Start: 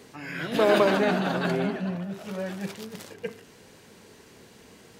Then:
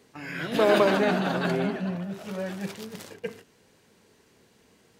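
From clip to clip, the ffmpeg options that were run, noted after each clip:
-af "agate=range=-9dB:threshold=-45dB:ratio=16:detection=peak"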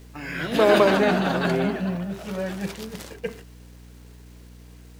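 -af "acrusher=bits=9:mix=0:aa=0.000001,aeval=exprs='val(0)+0.00398*(sin(2*PI*60*n/s)+sin(2*PI*2*60*n/s)/2+sin(2*PI*3*60*n/s)/3+sin(2*PI*4*60*n/s)/4+sin(2*PI*5*60*n/s)/5)':c=same,volume=3.5dB"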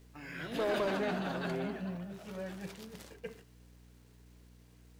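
-af "flanger=delay=6.8:depth=1.4:regen=-86:speed=1.6:shape=triangular,asoftclip=type=tanh:threshold=-17.5dB,volume=-8dB"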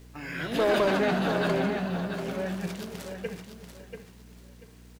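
-af "aecho=1:1:688|1376|2064:0.398|0.0995|0.0249,volume=8.5dB"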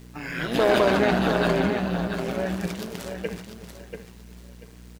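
-af "tremolo=f=120:d=0.621,volume=7dB"

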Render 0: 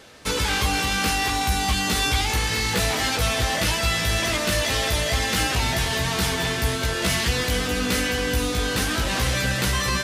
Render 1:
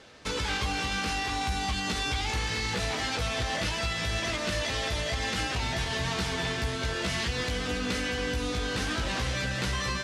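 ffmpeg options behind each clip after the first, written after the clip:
-af "lowpass=6.6k,alimiter=limit=-16dB:level=0:latency=1:release=153,volume=-4.5dB"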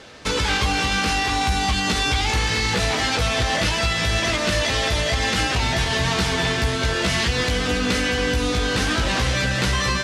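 -af "acontrast=69,volume=2.5dB"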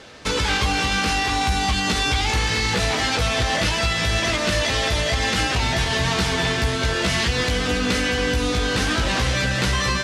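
-af anull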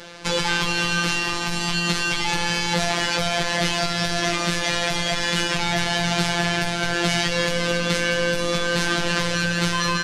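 -filter_complex "[0:a]asplit=2[a][b];[b]alimiter=limit=-20.5dB:level=0:latency=1,volume=0.5dB[c];[a][c]amix=inputs=2:normalize=0,afftfilt=real='hypot(re,im)*cos(PI*b)':imag='0':win_size=1024:overlap=0.75"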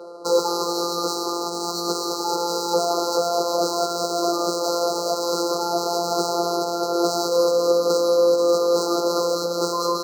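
-af "adynamicsmooth=sensitivity=2.5:basefreq=1.5k,afftfilt=real='re*(1-between(b*sr/4096,1500,3900))':imag='im*(1-between(b*sr/4096,1500,3900))':win_size=4096:overlap=0.75,highpass=f=420:t=q:w=4.9"

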